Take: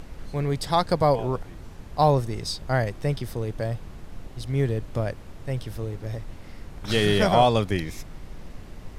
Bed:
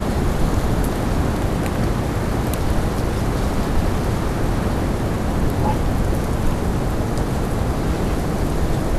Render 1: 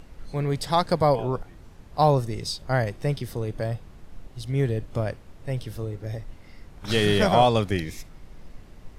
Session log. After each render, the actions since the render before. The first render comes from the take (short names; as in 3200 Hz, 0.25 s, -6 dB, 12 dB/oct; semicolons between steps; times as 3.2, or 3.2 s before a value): noise print and reduce 6 dB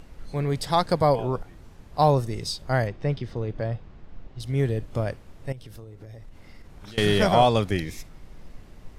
2.87–4.4 air absorption 150 m; 5.52–6.98 compressor 16:1, threshold -38 dBFS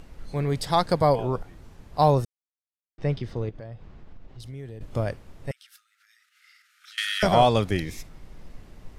2.25–2.98 mute; 3.49–4.81 compressor 4:1, threshold -38 dBFS; 5.51–7.23 brick-wall FIR high-pass 1200 Hz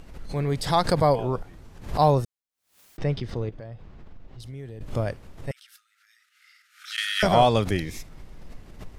backwards sustainer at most 130 dB/s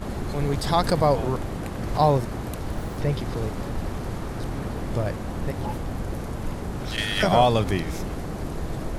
add bed -10.5 dB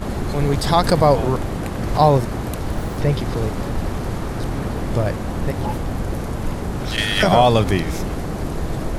gain +6 dB; limiter -3 dBFS, peak gain reduction 3 dB